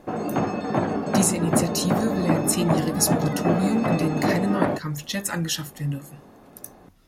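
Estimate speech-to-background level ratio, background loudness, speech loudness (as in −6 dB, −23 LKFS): −0.5 dB, −25.0 LKFS, −25.5 LKFS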